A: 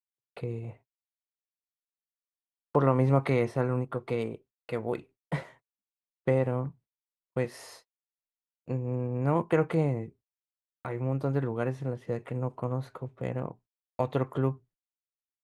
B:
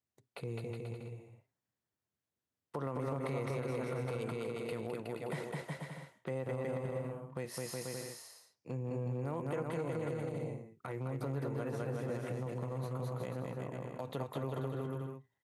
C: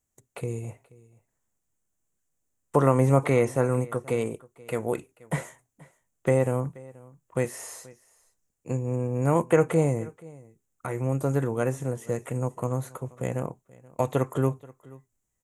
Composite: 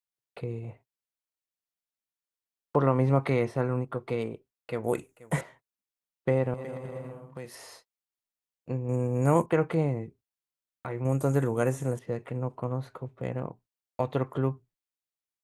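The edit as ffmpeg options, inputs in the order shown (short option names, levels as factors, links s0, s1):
-filter_complex "[2:a]asplit=3[s0][s1][s2];[0:a]asplit=5[s3][s4][s5][s6][s7];[s3]atrim=end=4.842[s8];[s0]atrim=start=4.838:end=5.412[s9];[s4]atrim=start=5.408:end=6.542[s10];[1:a]atrim=start=6.538:end=7.552[s11];[s5]atrim=start=7.548:end=8.892[s12];[s1]atrim=start=8.888:end=9.462[s13];[s6]atrim=start=9.458:end=11.052[s14];[s2]atrim=start=11.048:end=11.992[s15];[s7]atrim=start=11.988[s16];[s8][s9]acrossfade=d=0.004:c1=hsin:c2=hsin[s17];[s17][s10]acrossfade=d=0.004:c1=hsin:c2=hsin[s18];[s18][s11]acrossfade=d=0.004:c1=hsin:c2=hsin[s19];[s19][s12]acrossfade=d=0.004:c1=hsin:c2=hsin[s20];[s20][s13]acrossfade=d=0.004:c1=hsin:c2=hsin[s21];[s21][s14]acrossfade=d=0.004:c1=hsin:c2=hsin[s22];[s22][s15]acrossfade=d=0.004:c1=hsin:c2=hsin[s23];[s23][s16]acrossfade=d=0.004:c1=hsin:c2=hsin"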